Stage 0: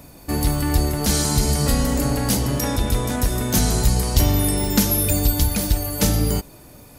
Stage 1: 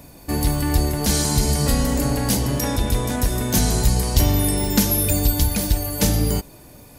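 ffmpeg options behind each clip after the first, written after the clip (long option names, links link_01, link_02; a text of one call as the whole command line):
ffmpeg -i in.wav -af "bandreject=frequency=1300:width=12" out.wav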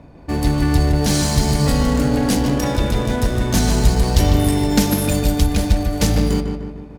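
ffmpeg -i in.wav -filter_complex "[0:a]asplit=2[link_01][link_02];[link_02]adelay=150,lowpass=frequency=3500:poles=1,volume=-5dB,asplit=2[link_03][link_04];[link_04]adelay=150,lowpass=frequency=3500:poles=1,volume=0.54,asplit=2[link_05][link_06];[link_06]adelay=150,lowpass=frequency=3500:poles=1,volume=0.54,asplit=2[link_07][link_08];[link_08]adelay=150,lowpass=frequency=3500:poles=1,volume=0.54,asplit=2[link_09][link_10];[link_10]adelay=150,lowpass=frequency=3500:poles=1,volume=0.54,asplit=2[link_11][link_12];[link_12]adelay=150,lowpass=frequency=3500:poles=1,volume=0.54,asplit=2[link_13][link_14];[link_14]adelay=150,lowpass=frequency=3500:poles=1,volume=0.54[link_15];[link_01][link_03][link_05][link_07][link_09][link_11][link_13][link_15]amix=inputs=8:normalize=0,adynamicsmooth=sensitivity=7:basefreq=1700,volume=2dB" out.wav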